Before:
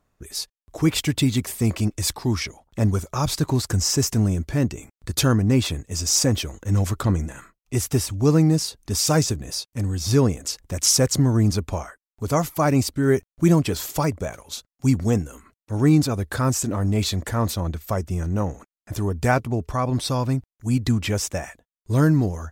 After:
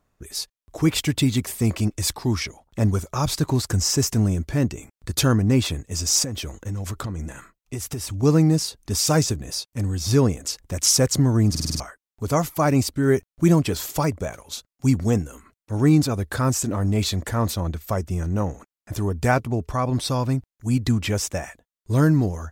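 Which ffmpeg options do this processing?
-filter_complex "[0:a]asettb=1/sr,asplit=3[a][b][c];[a]atrim=end=6.234[d];[b]atrim=start=6.23:end=8.23,asetpts=PTS-STARTPTS,afade=t=in:d=0.004:c=qsin,afade=t=out:st=1.996:d=0.004:c=qsin,acompressor=threshold=-25dB:ratio=10:attack=3.2:release=140:knee=1:detection=peak[e];[c]atrim=start=8.226[f];[d][e]acrossfade=d=0.004:c1=hsin:c2=qsin[g];[g][f]acrossfade=d=0.004:c1=qsin:c2=hsin,asplit=7[h][i][j][k][l][m][n];[h]atrim=end=11.552[o];[i]atrim=start=11.498:end=11.552[p];[j]atrim=start=11.498:end=11.552[q];[k]atrim=start=11.498:end=11.552[r];[l]atrim=start=11.498:end=11.552[s];[m]atrim=start=11.498:end=11.552[t];[n]atrim=start=11.798[u];[o][p]acrossfade=d=0.004:c1=hsin:c2=hsin[v];[v][q]acrossfade=d=0.004:c1=hsin:c2=hsin[w];[w][r]acrossfade=d=0.004:c1=hsin:c2=hsin[x];[x][s]acrossfade=d=0.004:c1=hsin:c2=hsin[y];[y][t]acrossfade=d=0.004:c1=hsin:c2=hsin[z];[z][u]acrossfade=d=0.004:c1=hsin:c2=hsin"

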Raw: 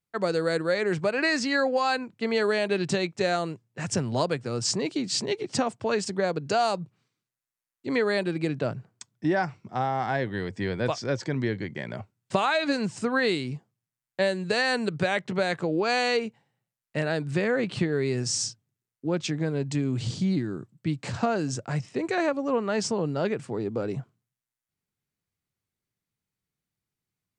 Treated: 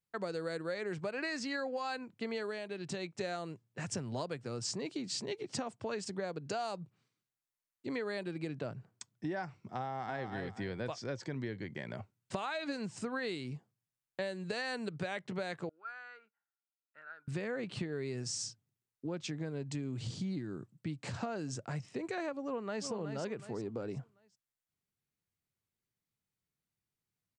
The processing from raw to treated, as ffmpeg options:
-filter_complex "[0:a]asplit=2[a][b];[b]afade=t=in:st=9.84:d=0.01,afade=t=out:st=10.26:d=0.01,aecho=0:1:240|480|720:0.473151|0.118288|0.029572[c];[a][c]amix=inputs=2:normalize=0,asettb=1/sr,asplit=3[d][e][f];[d]atrim=end=15.694[g];[e]atrim=start=15.69:end=17.28,asetpts=PTS-STARTPTS,afade=t=in:d=0.004:c=qsin,afade=t=out:st=1.586:d=0.004:c=qsin,bandpass=f=1.4k:t=q:w=16[h];[f]atrim=start=17.276[i];[g][h]acrossfade=d=0.004:c1=hsin:c2=qsin[j];[j][i]acrossfade=d=0.004:c1=qsin:c2=hsin,asplit=2[k][l];[l]afade=t=in:st=22.44:d=0.01,afade=t=out:st=22.87:d=0.01,aecho=0:1:370|740|1110|1480:0.398107|0.119432|0.0358296|0.0107489[m];[k][m]amix=inputs=2:normalize=0,asplit=3[n][o][p];[n]atrim=end=2.66,asetpts=PTS-STARTPTS,afade=t=out:st=2.29:d=0.37:silence=0.375837[q];[o]atrim=start=2.66:end=2.81,asetpts=PTS-STARTPTS,volume=-8.5dB[r];[p]atrim=start=2.81,asetpts=PTS-STARTPTS,afade=t=in:d=0.37:silence=0.375837[s];[q][r][s]concat=n=3:v=0:a=1,acompressor=threshold=-34dB:ratio=2.5,volume=-4.5dB"

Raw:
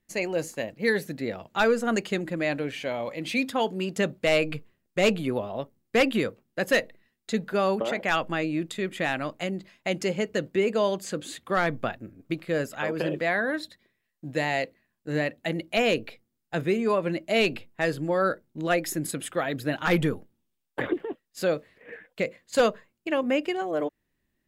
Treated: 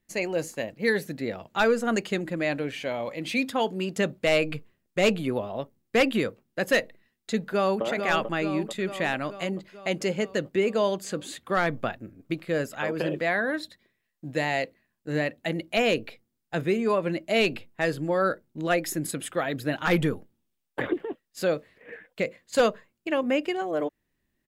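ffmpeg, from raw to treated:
-filter_complex "[0:a]asplit=2[a][b];[b]afade=t=in:st=7.42:d=0.01,afade=t=out:st=7.84:d=0.01,aecho=0:1:440|880|1320|1760|2200|2640|3080|3520|3960:0.473151|0.307548|0.199906|0.129939|0.0844605|0.0548993|0.0356845|0.023195|0.0150767[c];[a][c]amix=inputs=2:normalize=0"

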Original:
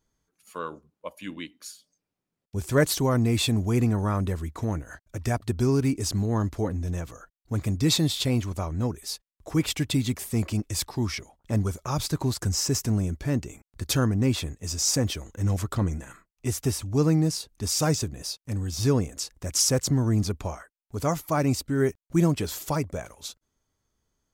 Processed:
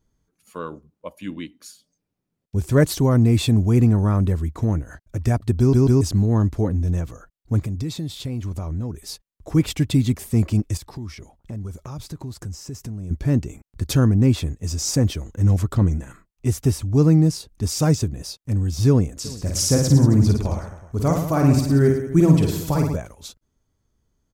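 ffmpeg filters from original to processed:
-filter_complex "[0:a]asplit=3[a][b][c];[a]afade=t=out:st=7.59:d=0.02[d];[b]acompressor=threshold=-32dB:ratio=4:attack=3.2:release=140:knee=1:detection=peak,afade=t=in:st=7.59:d=0.02,afade=t=out:st=9.03:d=0.02[e];[c]afade=t=in:st=9.03:d=0.02[f];[d][e][f]amix=inputs=3:normalize=0,asettb=1/sr,asplit=3[g][h][i];[g]atrim=end=10.774[j];[h]atrim=start=10.77:end=13.11,asetpts=PTS-STARTPTS,afade=t=in:d=0.004:c=qsin,afade=t=out:st=2.336:d=0.004:c=qsin,acompressor=threshold=-37dB:ratio=5:attack=3.2:release=140:knee=1:detection=peak[k];[i]atrim=start=13.106[l];[j][k]acrossfade=d=0.004:c1=hsin:c2=qsin[m];[m][l]acrossfade=d=0.004:c1=qsin:c2=hsin,asplit=3[n][o][p];[n]afade=t=out:st=19.24:d=0.02[q];[o]aecho=1:1:50|110|182|268.4|372.1:0.631|0.398|0.251|0.158|0.1,afade=t=in:st=19.24:d=0.02,afade=t=out:st=22.95:d=0.02[r];[p]afade=t=in:st=22.95:d=0.02[s];[q][r][s]amix=inputs=3:normalize=0,asplit=4[t][u][v][w];[t]atrim=end=5.732[x];[u]atrim=start=5.588:end=5.732[y];[v]atrim=start=5.588:end=5.732[z];[w]atrim=start=6.008[aa];[x][y]acrossfade=d=0.004:c1=hsin:c2=hsin[ab];[ab][z]acrossfade=d=0.004:c1=hsin:c2=hsin[ac];[ac][aa]acrossfade=d=0.004:c1=hsin:c2=hsin,lowshelf=f=420:g=10,volume=-1dB"

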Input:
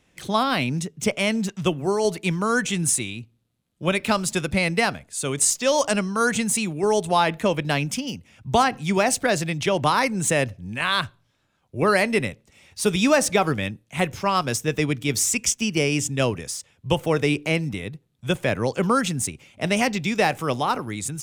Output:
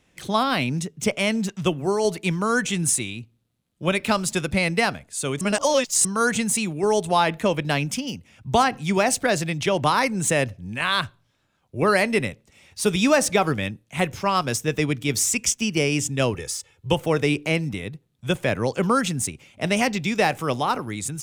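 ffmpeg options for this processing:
-filter_complex "[0:a]asettb=1/sr,asplit=3[a][b][c];[a]atrim=end=16.344[d];[b]atrim=start=16.34:end=16.92,asetpts=PTS-STARTPTS,afade=t=in:d=0.004:c=qsin,afade=t=out:st=0.576:d=0.004:c=qsin,aecho=1:1:2.3:0.65,atrim=end_sample=25578[e];[c]atrim=start=16.916[f];[d][e]acrossfade=d=0.004:c1=hsin:c2=qsin[g];[g][f]acrossfade=d=0.004:c1=qsin:c2=hsin,asplit=3[h][i][j];[h]atrim=end=5.412[k];[i]atrim=start=5.408:end=6.052,asetpts=PTS-STARTPTS,areverse[l];[j]atrim=start=6.048[m];[k][l]acrossfade=d=0.004:c1=hsin:c2=hsin[n];[n][m]acrossfade=d=0.004:c1=hsin:c2=hsin"

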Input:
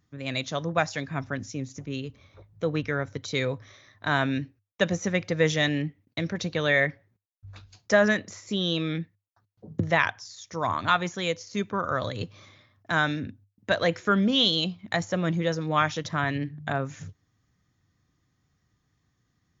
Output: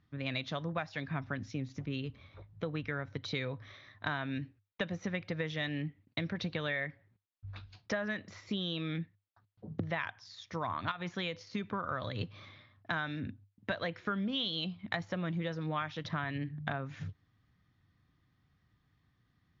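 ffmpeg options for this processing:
-filter_complex "[0:a]asettb=1/sr,asplit=3[a][b][c];[a]atrim=end=10.914[d];[b]atrim=start=10.91:end=11.7,asetpts=PTS-STARTPTS,afade=t=in:d=0.004:c=qsin,afade=t=out:st=0.786:d=0.004:c=qsin,acompressor=threshold=-25dB:ratio=12:attack=3.2:release=140:knee=1:detection=peak[e];[c]atrim=start=11.696[f];[d][e]acrossfade=d=0.004:c1=hsin:c2=qsin[g];[g][f]acrossfade=d=0.004:c1=qsin:c2=hsin,lowpass=f=4.2k:w=0.5412,lowpass=f=4.2k:w=1.3066,acompressor=threshold=-31dB:ratio=6,equalizer=f=450:w=1.1:g=-4"

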